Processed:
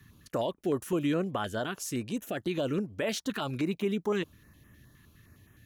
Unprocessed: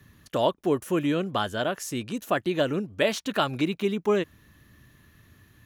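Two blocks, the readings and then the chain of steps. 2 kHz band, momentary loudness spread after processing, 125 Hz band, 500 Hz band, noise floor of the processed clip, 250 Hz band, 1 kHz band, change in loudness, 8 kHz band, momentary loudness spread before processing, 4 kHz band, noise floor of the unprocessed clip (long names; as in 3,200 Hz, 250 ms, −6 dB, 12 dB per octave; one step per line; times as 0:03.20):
−6.5 dB, 5 LU, −3.0 dB, −6.0 dB, −61 dBFS, −3.5 dB, −8.0 dB, −5.0 dB, −2.0 dB, 6 LU, −7.0 dB, −59 dBFS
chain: brickwall limiter −18.5 dBFS, peak gain reduction 8.5 dB
notch on a step sequencer 9.7 Hz 580–4,400 Hz
level −1.5 dB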